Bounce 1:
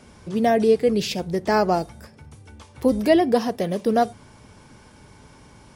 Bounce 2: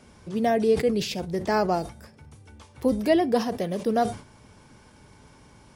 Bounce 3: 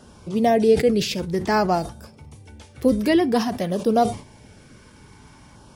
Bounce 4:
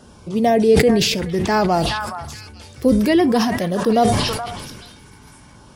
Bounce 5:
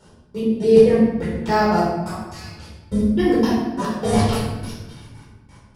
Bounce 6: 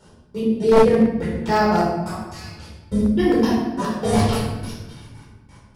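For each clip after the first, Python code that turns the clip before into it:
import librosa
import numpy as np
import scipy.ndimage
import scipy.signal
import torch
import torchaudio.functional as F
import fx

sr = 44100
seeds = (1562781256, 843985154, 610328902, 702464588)

y1 = fx.sustainer(x, sr, db_per_s=140.0)
y1 = F.gain(torch.from_numpy(y1), -4.0).numpy()
y2 = fx.filter_lfo_notch(y1, sr, shape='saw_down', hz=0.54, low_hz=400.0, high_hz=2300.0, q=2.4)
y2 = F.gain(torch.from_numpy(y2), 5.0).numpy()
y3 = fx.echo_stepped(y2, sr, ms=424, hz=1300.0, octaves=1.4, feedback_pct=70, wet_db=-4.5)
y3 = fx.sustainer(y3, sr, db_per_s=33.0)
y3 = F.gain(torch.from_numpy(y3), 2.0).numpy()
y4 = fx.step_gate(y3, sr, bpm=175, pattern='x...x..xx.', floor_db=-60.0, edge_ms=4.5)
y4 = fx.room_shoebox(y4, sr, seeds[0], volume_m3=580.0, walls='mixed', distance_m=4.5)
y4 = F.gain(torch.from_numpy(y4), -10.0).numpy()
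y5 = np.minimum(y4, 2.0 * 10.0 ** (-10.0 / 20.0) - y4)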